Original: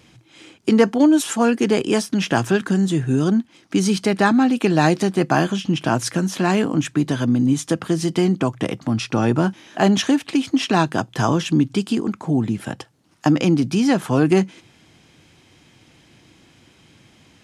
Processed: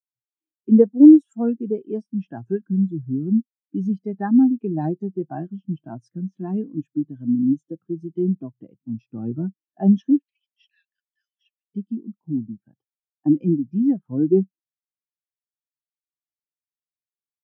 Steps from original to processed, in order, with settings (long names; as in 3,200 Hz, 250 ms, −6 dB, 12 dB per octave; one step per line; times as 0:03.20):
0:10.24–0:11.74: elliptic band-pass filter 1,800–5,800 Hz, stop band 40 dB
every bin expanded away from the loudest bin 2.5 to 1